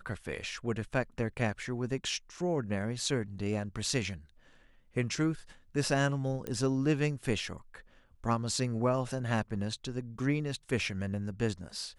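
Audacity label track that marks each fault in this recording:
6.470000	6.470000	pop -22 dBFS

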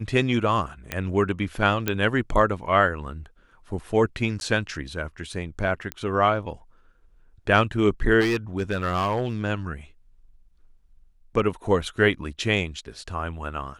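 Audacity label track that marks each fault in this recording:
0.920000	0.920000	pop -11 dBFS
1.880000	1.880000	pop -8 dBFS
4.400000	4.410000	dropout 11 ms
5.920000	5.920000	pop -14 dBFS
8.200000	9.330000	clipped -19 dBFS

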